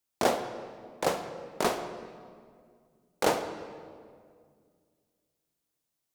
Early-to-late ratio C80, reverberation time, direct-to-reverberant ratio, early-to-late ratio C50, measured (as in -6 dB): 10.0 dB, 2.0 s, 8.0 dB, 9.0 dB